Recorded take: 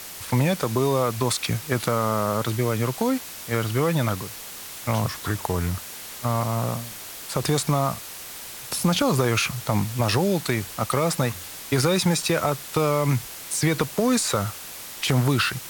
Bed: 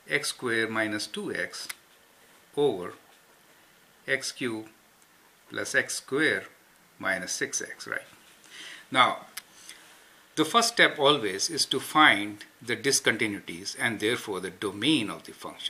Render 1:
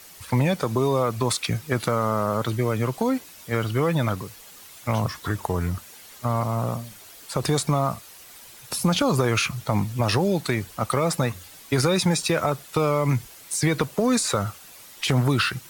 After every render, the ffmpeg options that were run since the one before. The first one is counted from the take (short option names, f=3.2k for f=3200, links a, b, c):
-af "afftdn=nr=10:nf=-38"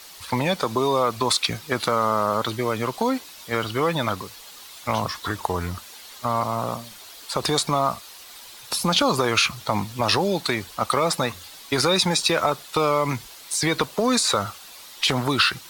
-af "equalizer=f=125:t=o:w=1:g=-8,equalizer=f=1k:t=o:w=1:g=5,equalizer=f=4k:t=o:w=1:g=8"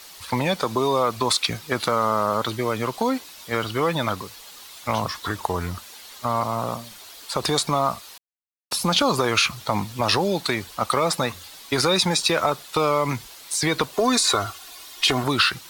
-filter_complex "[0:a]asettb=1/sr,asplit=3[a][b][c];[a]atrim=end=13.934[d];[b]atrim=start=13.93:end=15.24,asetpts=PTS-STARTPTS,afade=t=in:d=0.004:c=qsin,afade=t=out:st=1.306:d=0.004:c=qsin,aecho=1:1:2.8:0.65,atrim=end_sample=57771[e];[c]atrim=start=15.236[f];[d][e]acrossfade=d=0.004:c1=hsin:c2=qsin[g];[g][f]acrossfade=d=0.004:c1=qsin:c2=hsin,asplit=3[h][i][j];[h]atrim=end=8.18,asetpts=PTS-STARTPTS,afade=t=out:st=8.176:d=0.004:c=hsin[k];[i]atrim=start=8.18:end=8.71,asetpts=PTS-STARTPTS,volume=0[l];[j]atrim=start=8.71,asetpts=PTS-STARTPTS,afade=t=in:d=0.004:c=hsin[m];[k][l][m]concat=n=3:v=0:a=1"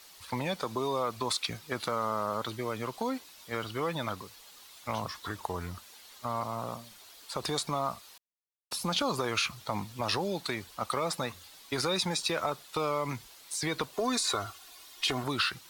-af "volume=-10dB"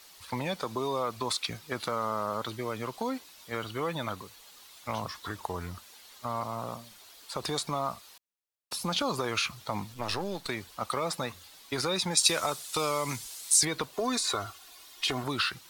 -filter_complex "[0:a]asettb=1/sr,asplit=3[a][b][c];[a]atrim=end=3.514[d];[b]atrim=start=3.51:end=4.42,asetpts=PTS-STARTPTS,afade=t=in:d=0.004:c=qsin,afade=t=out:st=0.906:d=0.004:c=qsin,bandreject=f=5.1k:w=12[e];[c]atrim=start=4.416[f];[d][e]acrossfade=d=0.004:c1=hsin:c2=qsin[g];[g][f]acrossfade=d=0.004:c1=qsin:c2=hsin,asettb=1/sr,asplit=3[h][i][j];[h]atrim=end=9.944[k];[i]atrim=start=9.94:end=10.49,asetpts=PTS-STARTPTS,afade=t=in:d=0.004:c=qsin,afade=t=out:st=0.546:d=0.004:c=qsin,aeval=exprs='if(lt(val(0),0),0.447*val(0),val(0))':c=same[l];[j]atrim=start=10.486[m];[k][l]acrossfade=d=0.004:c1=hsin:c2=qsin[n];[n][m]acrossfade=d=0.004:c1=qsin:c2=hsin,asettb=1/sr,asplit=3[o][p][q];[o]atrim=end=12.174[r];[p]atrim=start=12.17:end=13.65,asetpts=PTS-STARTPTS,afade=t=in:d=0.004:c=qsin,afade=t=out:st=1.476:d=0.004:c=qsin,equalizer=f=8.7k:w=0.49:g=15[s];[q]atrim=start=13.646[t];[r][s]acrossfade=d=0.004:c1=hsin:c2=qsin[u];[u][t]acrossfade=d=0.004:c1=qsin:c2=hsin"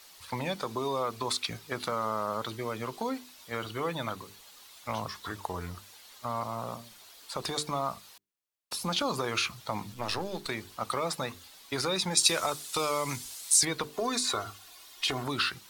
-af "bandreject=f=50:t=h:w=6,bandreject=f=100:t=h:w=6,bandreject=f=150:t=h:w=6,bandreject=f=200:t=h:w=6,bandreject=f=250:t=h:w=6,bandreject=f=300:t=h:w=6,bandreject=f=350:t=h:w=6,bandreject=f=400:t=h:w=6,bandreject=f=450:t=h:w=6"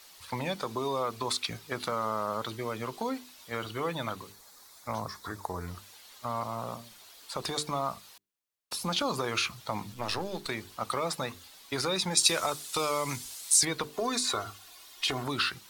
-filter_complex "[0:a]asettb=1/sr,asplit=3[a][b][c];[a]atrim=end=4.324[d];[b]atrim=start=4.32:end=5.68,asetpts=PTS-STARTPTS,afade=t=in:d=0.004:c=qsin,afade=t=out:st=1.356:d=0.004:c=qsin,equalizer=f=2.9k:t=o:w=0.55:g=-13.5[e];[c]atrim=start=5.676[f];[d][e]acrossfade=d=0.004:c1=hsin:c2=qsin[g];[g][f]acrossfade=d=0.004:c1=qsin:c2=hsin"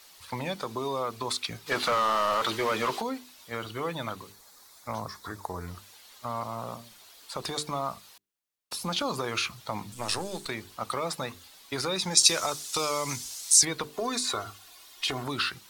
-filter_complex "[0:a]asplit=3[a][b][c];[a]afade=t=out:st=1.66:d=0.02[d];[b]asplit=2[e][f];[f]highpass=f=720:p=1,volume=22dB,asoftclip=type=tanh:threshold=-17dB[g];[e][g]amix=inputs=2:normalize=0,lowpass=f=3.9k:p=1,volume=-6dB,afade=t=in:st=1.66:d=0.02,afade=t=out:st=3:d=0.02[h];[c]afade=t=in:st=3:d=0.02[i];[d][h][i]amix=inputs=3:normalize=0,asettb=1/sr,asplit=3[j][k][l];[j]atrim=end=9.924[m];[k]atrim=start=9.92:end=10.45,asetpts=PTS-STARTPTS,afade=t=in:d=0.004:c=qsin,afade=t=out:st=0.526:d=0.004:c=qsin,equalizer=f=8.4k:t=o:w=0.84:g=14.5[n];[l]atrim=start=10.446[o];[m][n]acrossfade=d=0.004:c1=hsin:c2=qsin[p];[p][o]acrossfade=d=0.004:c1=qsin:c2=hsin,asettb=1/sr,asplit=3[q][r][s];[q]atrim=end=12.034[t];[r]atrim=start=12.03:end=13.62,asetpts=PTS-STARTPTS,afade=t=in:d=0.004:c=qsin,afade=t=out:st=1.586:d=0.004:c=qsin,equalizer=f=5.9k:t=o:w=0.75:g=7.5[u];[s]atrim=start=13.616[v];[t][u]acrossfade=d=0.004:c1=hsin:c2=qsin[w];[w][v]acrossfade=d=0.004:c1=qsin:c2=hsin"